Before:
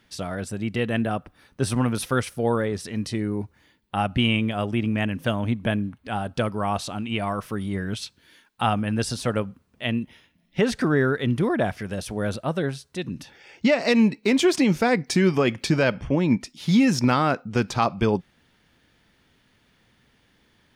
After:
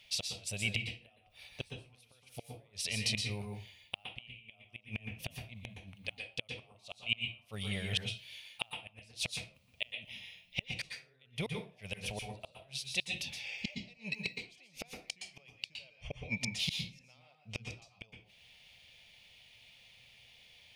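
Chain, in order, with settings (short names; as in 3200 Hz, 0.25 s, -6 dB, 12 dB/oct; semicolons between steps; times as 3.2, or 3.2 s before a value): resonant low shelf 440 Hz -12 dB, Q 3; in parallel at +1 dB: compressor 6:1, threshold -31 dBFS, peak gain reduction 19.5 dB; on the sum: flipped gate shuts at -16 dBFS, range -34 dB; EQ curve 110 Hz 0 dB, 1600 Hz -22 dB, 2400 Hz +4 dB, 7800 Hz -5 dB; reverb RT60 0.35 s, pre-delay 0.113 s, DRR 2.5 dB; gain -1.5 dB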